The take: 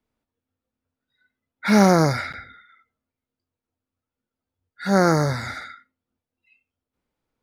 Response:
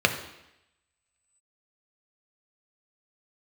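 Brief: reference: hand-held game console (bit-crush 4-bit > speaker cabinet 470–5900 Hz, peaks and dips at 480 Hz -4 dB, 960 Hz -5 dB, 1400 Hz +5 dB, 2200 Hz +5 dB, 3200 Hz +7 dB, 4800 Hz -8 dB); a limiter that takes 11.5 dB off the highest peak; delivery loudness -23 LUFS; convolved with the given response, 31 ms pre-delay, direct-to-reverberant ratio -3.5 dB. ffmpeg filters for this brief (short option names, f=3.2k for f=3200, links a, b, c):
-filter_complex "[0:a]alimiter=limit=-15.5dB:level=0:latency=1,asplit=2[a][b];[1:a]atrim=start_sample=2205,adelay=31[c];[b][c]afir=irnorm=-1:irlink=0,volume=-13dB[d];[a][d]amix=inputs=2:normalize=0,acrusher=bits=3:mix=0:aa=0.000001,highpass=470,equalizer=f=480:t=q:w=4:g=-4,equalizer=f=960:t=q:w=4:g=-5,equalizer=f=1.4k:t=q:w=4:g=5,equalizer=f=2.2k:t=q:w=4:g=5,equalizer=f=3.2k:t=q:w=4:g=7,equalizer=f=4.8k:t=q:w=4:g=-8,lowpass=f=5.9k:w=0.5412,lowpass=f=5.9k:w=1.3066,volume=-0.5dB"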